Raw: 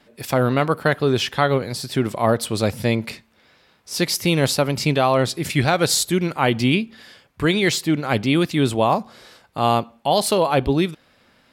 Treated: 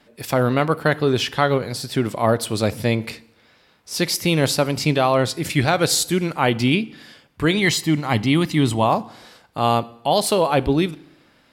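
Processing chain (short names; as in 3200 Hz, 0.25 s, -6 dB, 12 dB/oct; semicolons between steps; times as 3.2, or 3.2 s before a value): 7.57–8.84 comb 1 ms, depth 47%; FDN reverb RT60 0.85 s, low-frequency decay 1.05×, high-frequency decay 0.9×, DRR 18 dB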